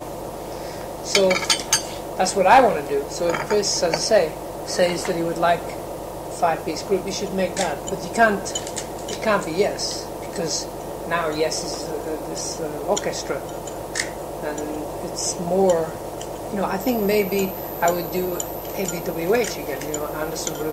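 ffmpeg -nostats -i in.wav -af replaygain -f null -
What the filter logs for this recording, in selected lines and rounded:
track_gain = +1.7 dB
track_peak = 0.479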